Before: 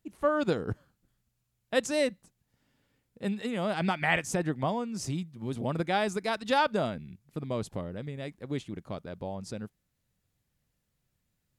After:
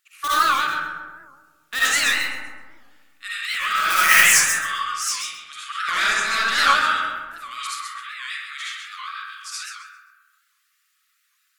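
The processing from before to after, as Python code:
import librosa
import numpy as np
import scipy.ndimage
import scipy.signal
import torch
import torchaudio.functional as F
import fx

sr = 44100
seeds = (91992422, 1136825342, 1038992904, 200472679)

p1 = fx.brickwall_highpass(x, sr, low_hz=1100.0)
p2 = (np.mod(10.0 ** (28.5 / 20.0) * p1 + 1.0, 2.0) - 1.0) / 10.0 ** (28.5 / 20.0)
p3 = p1 + F.gain(torch.from_numpy(p2), -3.5).numpy()
p4 = fx.high_shelf(p3, sr, hz=5000.0, db=11.0, at=(3.9, 4.35))
p5 = fx.echo_feedback(p4, sr, ms=130, feedback_pct=33, wet_db=-5.0)
p6 = fx.dereverb_blind(p5, sr, rt60_s=0.69)
p7 = fx.lowpass(p6, sr, hz=9100.0, slope=12, at=(5.29, 7.05))
p8 = fx.rev_freeverb(p7, sr, rt60_s=1.7, hf_ratio=0.3, predelay_ms=30, drr_db=-10.0)
p9 = fx.record_warp(p8, sr, rpm=78.0, depth_cents=160.0)
y = F.gain(torch.from_numpy(p9), 5.0).numpy()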